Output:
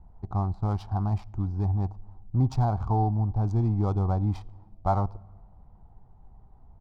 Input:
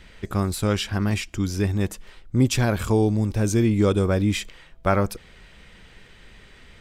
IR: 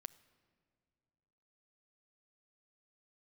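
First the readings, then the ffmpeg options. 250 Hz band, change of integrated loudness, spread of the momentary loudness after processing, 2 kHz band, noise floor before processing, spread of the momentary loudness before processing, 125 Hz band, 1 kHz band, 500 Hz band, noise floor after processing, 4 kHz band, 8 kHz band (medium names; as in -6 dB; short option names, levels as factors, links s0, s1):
-9.0 dB, -5.0 dB, 7 LU, under -20 dB, -50 dBFS, 9 LU, -1.5 dB, 0.0 dB, -11.0 dB, -54 dBFS, under -20 dB, under -25 dB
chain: -filter_complex "[0:a]adynamicsmooth=sensitivity=3.5:basefreq=810,firequalizer=gain_entry='entry(110,0);entry(210,-8);entry(540,-15);entry(760,7);entry(1700,-24);entry(2800,-25);entry(4500,-11);entry(13000,-21)':delay=0.05:min_phase=1,asplit=2[s0][s1];[1:a]atrim=start_sample=2205,lowpass=6100[s2];[s1][s2]afir=irnorm=-1:irlink=0,volume=1.19[s3];[s0][s3]amix=inputs=2:normalize=0,volume=0.562"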